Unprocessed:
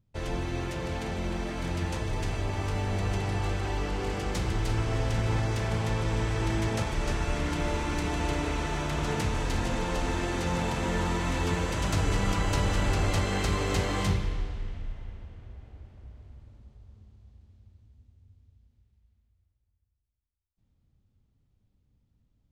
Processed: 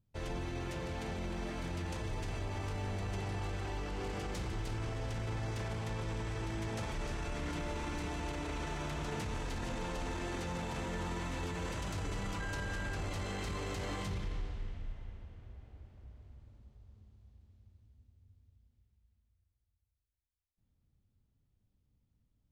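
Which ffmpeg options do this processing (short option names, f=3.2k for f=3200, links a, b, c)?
-filter_complex "[0:a]asettb=1/sr,asplit=3[a][b][c];[a]atrim=end=12.404[d];[b]atrim=start=12.4:end=12.96,asetpts=PTS-STARTPTS,afade=t=in:d=0.004:c=qsin,afade=t=out:st=0.556:d=0.004:c=qsin,aeval=exprs='val(0)+0.0316*sin(2*PI*1600*n/s)':c=same[e];[c]atrim=start=12.956[f];[d][e]acrossfade=d=0.004:c1=hsin:c2=qsin[g];[g][f]acrossfade=d=0.004:c1=qsin:c2=hsin,alimiter=level_in=0.5dB:limit=-24dB:level=0:latency=1:release=18,volume=-0.5dB,volume=-6dB"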